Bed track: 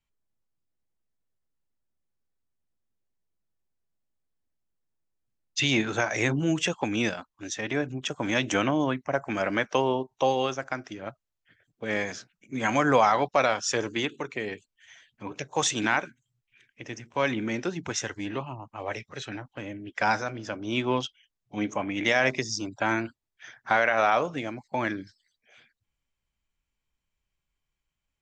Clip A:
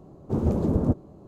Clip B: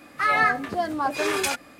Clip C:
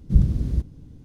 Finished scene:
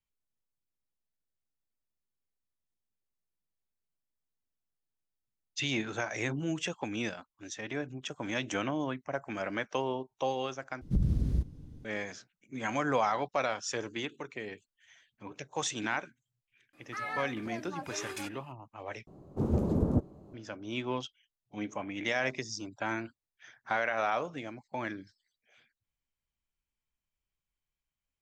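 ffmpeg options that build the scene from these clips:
-filter_complex "[0:a]volume=-8dB[a];[3:a]acompressor=threshold=-17dB:ratio=6:attack=3.2:release=140:knee=1:detection=peak[b];[a]asplit=3[c][d][e];[c]atrim=end=10.814[f];[b]atrim=end=1.04,asetpts=PTS-STARTPTS,volume=-4.5dB[g];[d]atrim=start=11.846:end=19.074[h];[1:a]atrim=end=1.27,asetpts=PTS-STARTPTS,volume=-5dB[i];[e]atrim=start=20.336[j];[2:a]atrim=end=1.79,asetpts=PTS-STARTPTS,volume=-16.5dB,afade=t=in:d=0.004:c=hsin,afade=t=out:st=1.786:d=0.004:c=hsin,adelay=16730[k];[f][g]acrossfade=d=0.004:c1=hsin:c2=hsin[l];[l][h]acrossfade=d=0.004:c1=hsin:c2=hsin[m];[m][i]acrossfade=d=0.004:c1=hsin:c2=hsin[n];[n][j]acrossfade=d=0.004:c1=hsin:c2=hsin[o];[o][k]amix=inputs=2:normalize=0"

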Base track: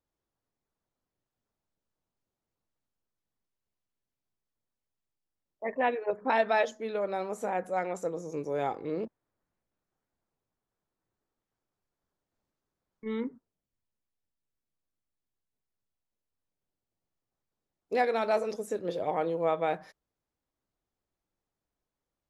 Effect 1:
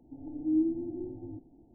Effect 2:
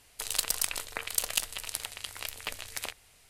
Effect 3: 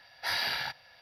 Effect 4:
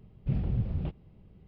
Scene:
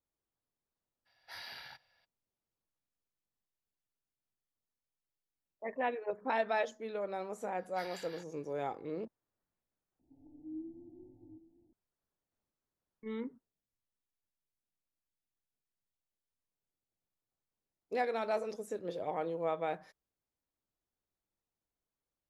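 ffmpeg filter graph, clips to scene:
-filter_complex "[3:a]asplit=2[a][b];[0:a]volume=-6.5dB[c];[b]acrossover=split=1400[d][e];[d]aeval=exprs='val(0)*(1-0.5/2+0.5/2*cos(2*PI*5.4*n/s))':c=same[f];[e]aeval=exprs='val(0)*(1-0.5/2-0.5/2*cos(2*PI*5.4*n/s))':c=same[g];[f][g]amix=inputs=2:normalize=0[h];[1:a]aecho=1:1:770:0.158[i];[c]asplit=2[j][k];[j]atrim=end=9.994[l];[i]atrim=end=1.74,asetpts=PTS-STARTPTS,volume=-17dB[m];[k]atrim=start=11.726[n];[a]atrim=end=1.01,asetpts=PTS-STARTPTS,volume=-16.5dB,afade=t=in:d=0.02,afade=t=out:st=0.99:d=0.02,adelay=1050[o];[h]atrim=end=1.01,asetpts=PTS-STARTPTS,volume=-17dB,afade=t=in:d=0.004:c=hsin,afade=t=out:st=1.006:d=0.004:c=hsin,adelay=7520[p];[l][m]acrossfade=d=0.004:c1=hsin:c2=hsin[q];[q][n]acrossfade=d=0.004:c1=hsin:c2=hsin[r];[r][o][p]amix=inputs=3:normalize=0"

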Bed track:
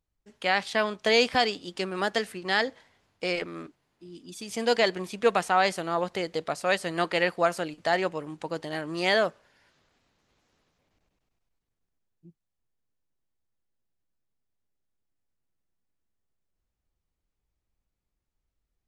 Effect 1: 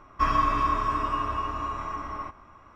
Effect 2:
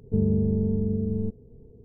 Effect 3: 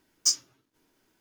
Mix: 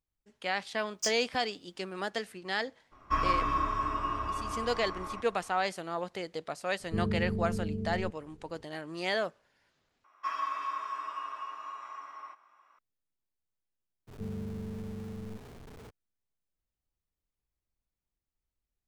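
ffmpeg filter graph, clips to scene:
-filter_complex "[1:a]asplit=2[a][b];[2:a]asplit=2[c][d];[0:a]volume=-7.5dB[e];[b]highpass=890[f];[d]aeval=exprs='val(0)+0.5*0.0447*sgn(val(0))':c=same[g];[e]asplit=2[h][i];[h]atrim=end=10.044[j];[f]atrim=end=2.75,asetpts=PTS-STARTPTS,volume=-8.5dB[k];[i]atrim=start=12.786[l];[3:a]atrim=end=1.2,asetpts=PTS-STARTPTS,volume=-10dB,afade=t=in:d=0.004:c=hsin,afade=t=out:st=1.196:d=0.004:c=hsin,adelay=770[m];[a]atrim=end=2.75,asetpts=PTS-STARTPTS,volume=-5dB,afade=t=in:d=0.02,afade=t=out:st=2.73:d=0.02,adelay=2910[n];[c]atrim=end=1.84,asetpts=PTS-STARTPTS,volume=-8.5dB,afade=t=in:d=0.004:c=hsin,afade=t=out:st=1.836:d=0.004:c=hsin,adelay=6800[o];[g]atrim=end=1.84,asetpts=PTS-STARTPTS,volume=-17dB,afade=t=in:d=0.02,afade=t=out:st=1.82:d=0.02,adelay=14070[p];[j][k]acrossfade=d=0.004:c1=hsin:c2=hsin[q];[q][l]acrossfade=d=0.004:c1=hsin:c2=hsin[r];[r][m][n][o][p]amix=inputs=5:normalize=0"

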